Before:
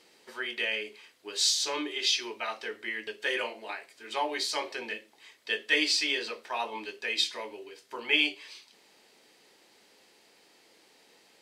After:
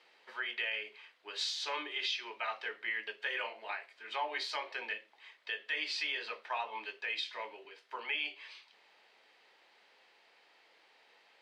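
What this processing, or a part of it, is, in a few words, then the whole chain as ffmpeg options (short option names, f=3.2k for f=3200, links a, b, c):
DJ mixer with the lows and highs turned down: -filter_complex "[0:a]acrossover=split=570 3800:gain=0.141 1 0.0891[a][b][c];[a][b][c]amix=inputs=3:normalize=0,alimiter=level_in=1.5dB:limit=-24dB:level=0:latency=1:release=214,volume=-1.5dB,asettb=1/sr,asplit=3[d][e][f];[d]atrim=end=7.654[g];[e]atrim=start=7.65:end=8.15,asetpts=PTS-STARTPTS,afade=t=in:d=0.004:c=qsin,afade=t=out:st=0.496:d=0.004:c=qsin,highpass=f=190:w=0.5412,highpass=f=190:w=1.3066[h];[f]atrim=start=8.146[i];[g][h]acrossfade=d=0.004:c1=hsin:c2=qsin[j];[j][i]acrossfade=d=0.004:c1=qsin:c2=hsin"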